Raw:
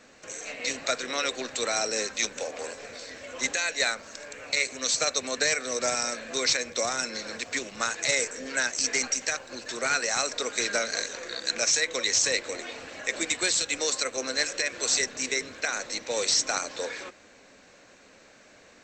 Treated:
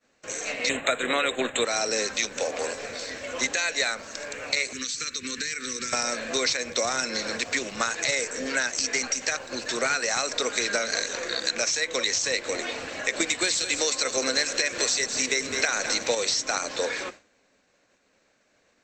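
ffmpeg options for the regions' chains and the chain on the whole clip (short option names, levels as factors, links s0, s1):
-filter_complex "[0:a]asettb=1/sr,asplit=3[s0][s1][s2];[s0]atrim=end=0.694[s3];[s1]atrim=start=0.69:end=1.65,asetpts=PTS-STARTPTS,afade=t=in:d=0.004:c=qsin,afade=t=out:st=0.956:d=0.004:c=qsin,agate=range=0.0224:threshold=0.0158:ratio=3:release=100:detection=peak,acontrast=72,asuperstop=centerf=5200:order=8:qfactor=1.6[s4];[s2]atrim=start=1.646[s5];[s3][s4]acrossfade=d=0.004:c1=hsin:c2=qsin[s6];[s6][s5]acrossfade=d=0.004:c1=qsin:c2=hsin,asettb=1/sr,asplit=3[s7][s8][s9];[s7]atrim=end=4.734[s10];[s8]atrim=start=4.73:end=5.93,asetpts=PTS-STARTPTS,afade=t=in:d=0.004:c=qsin,afade=t=out:st=1.196:d=0.004:c=qsin,asuperstop=centerf=710:order=4:qfactor=0.69,acompressor=threshold=0.02:ratio=5:attack=3.2:release=140:knee=1:detection=peak[s11];[s9]atrim=start=5.926[s12];[s10][s11]acrossfade=d=0.004:c1=hsin:c2=qsin[s13];[s13][s12]acrossfade=d=0.004:c1=qsin:c2=hsin,asettb=1/sr,asplit=3[s14][s15][s16];[s14]atrim=end=13.204[s17];[s15]atrim=start=13.2:end=16.15,asetpts=PTS-STARTPTS,afade=t=in:d=0.004:c=qsin,afade=t=out:st=2.946:d=0.004:c=qsin,highshelf=f=5900:g=4.5,acontrast=67,aecho=1:1:208:0.237,atrim=end_sample=130095[s18];[s16]atrim=start=16.146[s19];[s17][s18]acrossfade=d=0.004:c1=hsin:c2=qsin[s20];[s20][s19]acrossfade=d=0.004:c1=qsin:c2=hsin,acompressor=threshold=0.0398:ratio=6,agate=range=0.0224:threshold=0.00794:ratio=3:detection=peak,acrossover=split=7100[s21][s22];[s22]acompressor=threshold=0.00631:ratio=4:attack=1:release=60[s23];[s21][s23]amix=inputs=2:normalize=0,volume=2.11"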